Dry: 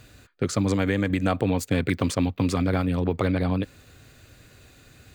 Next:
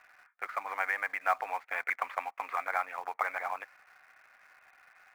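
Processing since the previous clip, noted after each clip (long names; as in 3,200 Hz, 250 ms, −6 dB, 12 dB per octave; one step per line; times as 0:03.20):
Chebyshev band-pass filter 760–2,200 Hz, order 3
in parallel at −11.5 dB: log-companded quantiser 4 bits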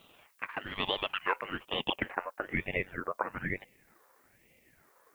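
low-pass filter sweep 2,700 Hz → 900 Hz, 0:01.19–0:02.88
background noise blue −66 dBFS
ring modulator whose carrier an LFO sweeps 760 Hz, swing 70%, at 1.1 Hz
level −1.5 dB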